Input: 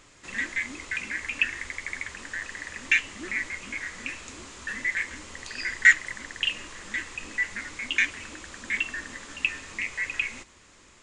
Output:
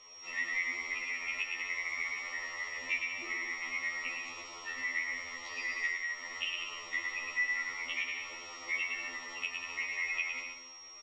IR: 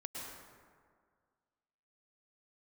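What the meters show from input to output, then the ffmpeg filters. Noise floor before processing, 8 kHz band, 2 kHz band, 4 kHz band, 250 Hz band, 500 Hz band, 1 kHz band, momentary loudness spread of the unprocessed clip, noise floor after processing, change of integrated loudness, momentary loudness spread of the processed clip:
-55 dBFS, -9.5 dB, -7.5 dB, -6.0 dB, -12.5 dB, -5.5 dB, -1.5 dB, 14 LU, -51 dBFS, -7.0 dB, 7 LU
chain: -filter_complex "[0:a]lowpass=f=7.6k:w=0.5412,lowpass=f=7.6k:w=1.3066,acrossover=split=460 3300:gain=0.126 1 0.126[a][b][c];[a][b][c]amix=inputs=3:normalize=0,bandreject=f=57.83:t=h:w=4,bandreject=f=115.66:t=h:w=4,bandreject=f=173.49:t=h:w=4,bandreject=f=231.32:t=h:w=4,bandreject=f=289.15:t=h:w=4,bandreject=f=346.98:t=h:w=4,bandreject=f=404.81:t=h:w=4,bandreject=f=462.64:t=h:w=4,bandreject=f=520.47:t=h:w=4,bandreject=f=578.3:t=h:w=4,bandreject=f=636.13:t=h:w=4,bandreject=f=693.96:t=h:w=4,bandreject=f=751.79:t=h:w=4,bandreject=f=809.62:t=h:w=4,bandreject=f=867.45:t=h:w=4,bandreject=f=925.28:t=h:w=4,bandreject=f=983.11:t=h:w=4,bandreject=f=1.04094k:t=h:w=4,bandreject=f=1.09877k:t=h:w=4,bandreject=f=1.1566k:t=h:w=4,bandreject=f=1.21443k:t=h:w=4,bandreject=f=1.27226k:t=h:w=4,bandreject=f=1.33009k:t=h:w=4,bandreject=f=1.38792k:t=h:w=4,bandreject=f=1.44575k:t=h:w=4,bandreject=f=1.50358k:t=h:w=4,bandreject=f=1.56141k:t=h:w=4,bandreject=f=1.61924k:t=h:w=4,bandreject=f=1.67707k:t=h:w=4,bandreject=f=1.7349k:t=h:w=4,bandreject=f=1.79273k:t=h:w=4,bandreject=f=1.85056k:t=h:w=4,bandreject=f=1.90839k:t=h:w=4,bandreject=f=1.96622k:t=h:w=4,bandreject=f=2.02405k:t=h:w=4,bandreject=f=2.08188k:t=h:w=4,bandreject=f=2.13971k:t=h:w=4,bandreject=f=2.19754k:t=h:w=4,bandreject=f=2.25537k:t=h:w=4,acompressor=threshold=-31dB:ratio=6,aeval=exprs='val(0)+0.00112*sin(2*PI*5600*n/s)':c=same,asuperstop=centerf=1600:order=8:qfactor=3.5,aecho=1:1:110|192.5|254.4|300.8|335.6:0.631|0.398|0.251|0.158|0.1,afftfilt=real='re*2*eq(mod(b,4),0)':imag='im*2*eq(mod(b,4),0)':win_size=2048:overlap=0.75,volume=1.5dB"

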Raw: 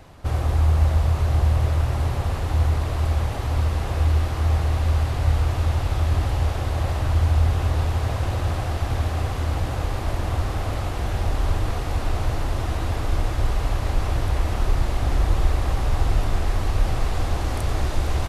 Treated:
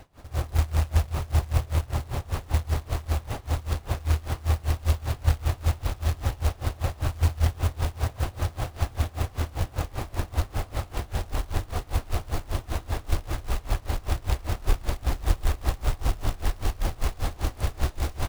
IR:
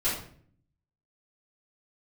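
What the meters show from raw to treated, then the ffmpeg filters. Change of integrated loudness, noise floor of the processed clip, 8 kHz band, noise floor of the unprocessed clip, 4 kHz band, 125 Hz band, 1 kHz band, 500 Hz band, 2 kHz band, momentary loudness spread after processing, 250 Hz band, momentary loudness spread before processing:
-5.5 dB, -47 dBFS, -1.0 dB, -27 dBFS, -3.5 dB, -5.5 dB, -5.5 dB, -5.5 dB, -4.5 dB, 6 LU, -5.5 dB, 6 LU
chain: -af "acrusher=bits=4:mode=log:mix=0:aa=0.000001,aeval=exprs='val(0)*pow(10,-24*(0.5-0.5*cos(2*PI*5.1*n/s))/20)':c=same"

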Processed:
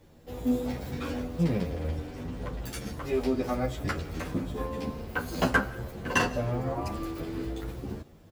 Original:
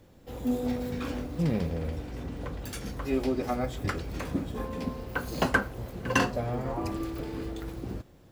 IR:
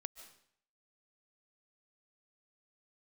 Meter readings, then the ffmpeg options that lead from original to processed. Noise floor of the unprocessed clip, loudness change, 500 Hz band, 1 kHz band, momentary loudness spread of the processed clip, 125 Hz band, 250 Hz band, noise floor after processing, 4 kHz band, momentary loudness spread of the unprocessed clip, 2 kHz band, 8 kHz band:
-55 dBFS, +0.5 dB, +0.5 dB, 0.0 dB, 10 LU, +0.5 dB, 0.0 dB, -54 dBFS, +0.5 dB, 11 LU, +0.5 dB, +0.5 dB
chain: -filter_complex "[0:a]asplit=2[a][b];[1:a]atrim=start_sample=2205[c];[b][c]afir=irnorm=-1:irlink=0,volume=-2.5dB[d];[a][d]amix=inputs=2:normalize=0,asplit=2[e][f];[f]adelay=10.6,afreqshift=1[g];[e][g]amix=inputs=2:normalize=1"

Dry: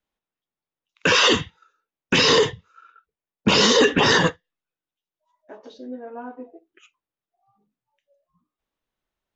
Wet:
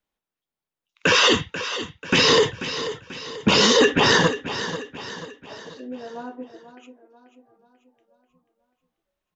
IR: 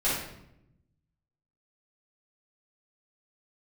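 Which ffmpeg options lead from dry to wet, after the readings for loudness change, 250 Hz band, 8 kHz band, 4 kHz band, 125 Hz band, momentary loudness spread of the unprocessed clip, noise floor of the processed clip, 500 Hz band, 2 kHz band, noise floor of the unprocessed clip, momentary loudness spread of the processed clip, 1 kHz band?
-1.5 dB, 0.0 dB, n/a, +0.5 dB, 0.0 dB, 21 LU, under -85 dBFS, +0.5 dB, +0.5 dB, under -85 dBFS, 21 LU, +0.5 dB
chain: -af "aecho=1:1:488|976|1464|1952|2440:0.251|0.116|0.0532|0.0244|0.0112"

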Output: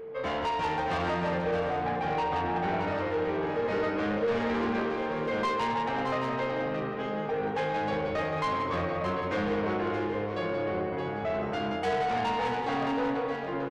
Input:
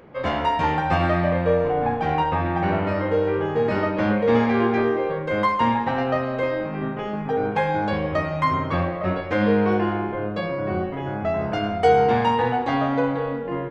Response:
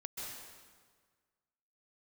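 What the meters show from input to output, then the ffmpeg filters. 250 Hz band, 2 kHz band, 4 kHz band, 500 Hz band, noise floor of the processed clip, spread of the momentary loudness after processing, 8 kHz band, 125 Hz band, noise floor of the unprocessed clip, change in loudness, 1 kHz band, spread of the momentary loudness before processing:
-8.5 dB, -6.0 dB, -4.0 dB, -7.5 dB, -33 dBFS, 3 LU, n/a, -11.0 dB, -29 dBFS, -7.5 dB, -7.0 dB, 7 LU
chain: -filter_complex "[0:a]lowshelf=f=180:g=-7,asplit=2[a][b];[b]aecho=0:1:177:0.422[c];[a][c]amix=inputs=2:normalize=0,asoftclip=type=tanh:threshold=-22dB,asplit=2[d][e];[e]aecho=0:1:621:0.447[f];[d][f]amix=inputs=2:normalize=0,aeval=exprs='val(0)+0.02*sin(2*PI*450*n/s)':c=same,volume=-4dB"

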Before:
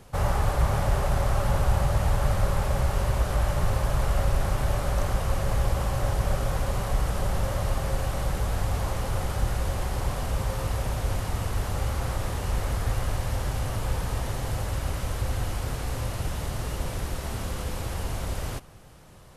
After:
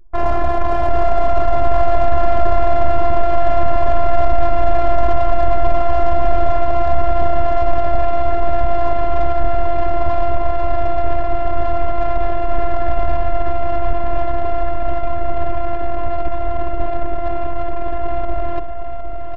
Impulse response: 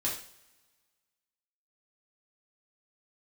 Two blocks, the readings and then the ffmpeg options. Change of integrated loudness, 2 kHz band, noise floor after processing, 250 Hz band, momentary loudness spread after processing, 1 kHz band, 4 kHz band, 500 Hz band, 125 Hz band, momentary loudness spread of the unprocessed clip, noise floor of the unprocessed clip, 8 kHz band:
+8.5 dB, +5.0 dB, -17 dBFS, +7.5 dB, 6 LU, +15.0 dB, n/a, +15.5 dB, 0.0 dB, 7 LU, -35 dBFS, under -15 dB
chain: -filter_complex "[0:a]afftfilt=real='hypot(re,im)*cos(PI*b)':imag='0':win_size=512:overlap=0.75,lowpass=f=1.8k:p=1,bandreject=f=50:t=h:w=6,bandreject=f=100:t=h:w=6,bandreject=f=150:t=h:w=6,bandreject=f=200:t=h:w=6,adynamicequalizer=threshold=0.00398:dfrequency=660:dqfactor=1.8:tfrequency=660:tqfactor=1.8:attack=5:release=100:ratio=0.375:range=2.5:mode=boostabove:tftype=bell,areverse,acompressor=mode=upward:threshold=-30dB:ratio=2.5,areverse,apsyclip=20.5dB,anlmdn=6310,asplit=2[a][b];[b]aecho=0:1:759|1518|2277|3036|3795:0.398|0.187|0.0879|0.0413|0.0194[c];[a][c]amix=inputs=2:normalize=0,volume=-6dB"

